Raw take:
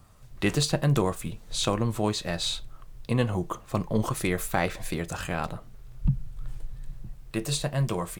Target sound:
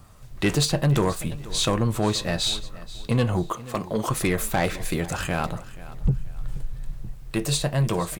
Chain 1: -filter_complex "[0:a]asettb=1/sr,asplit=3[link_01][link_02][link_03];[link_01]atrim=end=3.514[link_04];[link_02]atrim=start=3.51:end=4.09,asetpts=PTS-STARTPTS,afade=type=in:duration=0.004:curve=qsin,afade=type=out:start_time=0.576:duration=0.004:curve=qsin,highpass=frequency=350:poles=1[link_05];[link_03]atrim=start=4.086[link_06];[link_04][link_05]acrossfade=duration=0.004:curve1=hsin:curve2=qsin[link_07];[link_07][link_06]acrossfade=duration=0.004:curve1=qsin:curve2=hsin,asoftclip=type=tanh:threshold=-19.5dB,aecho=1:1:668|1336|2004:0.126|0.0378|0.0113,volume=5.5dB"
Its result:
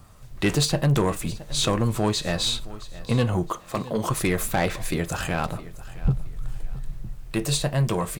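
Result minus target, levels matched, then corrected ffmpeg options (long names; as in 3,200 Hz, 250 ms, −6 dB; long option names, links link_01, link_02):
echo 187 ms late
-filter_complex "[0:a]asettb=1/sr,asplit=3[link_01][link_02][link_03];[link_01]atrim=end=3.514[link_04];[link_02]atrim=start=3.51:end=4.09,asetpts=PTS-STARTPTS,afade=type=in:duration=0.004:curve=qsin,afade=type=out:start_time=0.576:duration=0.004:curve=qsin,highpass=frequency=350:poles=1[link_05];[link_03]atrim=start=4.086[link_06];[link_04][link_05]acrossfade=duration=0.004:curve1=hsin:curve2=qsin[link_07];[link_07][link_06]acrossfade=duration=0.004:curve1=qsin:curve2=hsin,asoftclip=type=tanh:threshold=-19.5dB,aecho=1:1:481|962|1443:0.126|0.0378|0.0113,volume=5.5dB"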